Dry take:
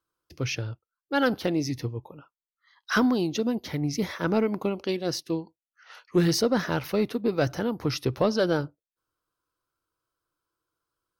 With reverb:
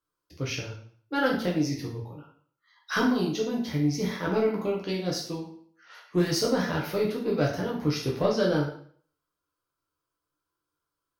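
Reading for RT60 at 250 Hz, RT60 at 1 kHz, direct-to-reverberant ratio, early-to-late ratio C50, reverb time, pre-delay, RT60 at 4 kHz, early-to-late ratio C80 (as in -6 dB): 0.50 s, 0.55 s, -3.0 dB, 5.5 dB, 0.55 s, 4 ms, 0.50 s, 9.5 dB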